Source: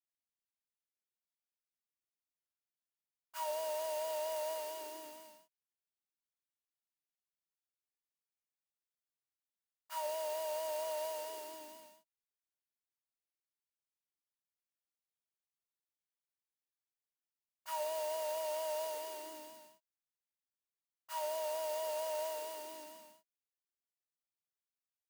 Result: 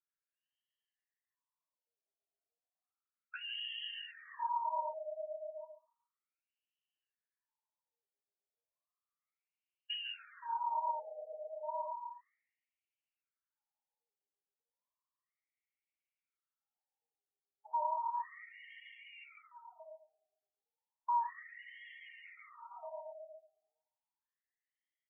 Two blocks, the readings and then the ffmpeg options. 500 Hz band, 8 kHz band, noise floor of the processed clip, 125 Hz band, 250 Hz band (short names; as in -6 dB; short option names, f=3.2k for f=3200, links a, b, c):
-8.5 dB, under -30 dB, under -85 dBFS, n/a, under -35 dB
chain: -filter_complex "[0:a]afftfilt=real='re*pow(10,18/40*sin(2*PI*(1.1*log(max(b,1)*sr/1024/100)/log(2)-(0.3)*(pts-256)/sr)))':imag='im*pow(10,18/40*sin(2*PI*(1.1*log(max(b,1)*sr/1024/100)/log(2)-(0.3)*(pts-256)/sr)))':win_size=1024:overlap=0.75,acrossover=split=210|3000[a][b][c];[b]acompressor=threshold=-46dB:ratio=2[d];[a][d][c]amix=inputs=3:normalize=0,asoftclip=type=hard:threshold=-36.5dB,bass=f=250:g=-12,treble=f=4k:g=11,aecho=1:1:139|278|417|556|695|834:0.631|0.303|0.145|0.0698|0.0335|0.0161,asplit=2[e][f];[f]aeval=exprs='0.0266*(abs(mod(val(0)/0.0266+3,4)-2)-1)':c=same,volume=-9dB[g];[e][g]amix=inputs=2:normalize=0,lowshelf=f=400:t=q:w=1.5:g=-14,afftdn=nr=21:nf=-49,acompressor=threshold=-51dB:ratio=3,aeval=exprs='val(0)+0.000562*(sin(2*PI*60*n/s)+sin(2*PI*2*60*n/s)/2+sin(2*PI*3*60*n/s)/3+sin(2*PI*4*60*n/s)/4+sin(2*PI*5*60*n/s)/5)':c=same,aecho=1:1:1:0.48,afftfilt=real='re*between(b*sr/1024,550*pow(2400/550,0.5+0.5*sin(2*PI*0.33*pts/sr))/1.41,550*pow(2400/550,0.5+0.5*sin(2*PI*0.33*pts/sr))*1.41)':imag='im*between(b*sr/1024,550*pow(2400/550,0.5+0.5*sin(2*PI*0.33*pts/sr))/1.41,550*pow(2400/550,0.5+0.5*sin(2*PI*0.33*pts/sr))*1.41)':win_size=1024:overlap=0.75,volume=17.5dB"